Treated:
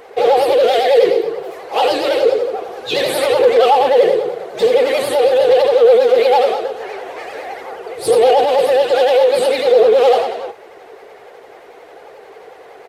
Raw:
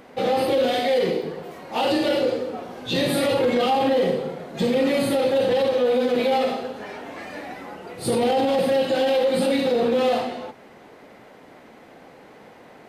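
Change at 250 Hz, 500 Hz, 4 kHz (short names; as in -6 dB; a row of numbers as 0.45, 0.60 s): -5.5, +9.5, +5.5 dB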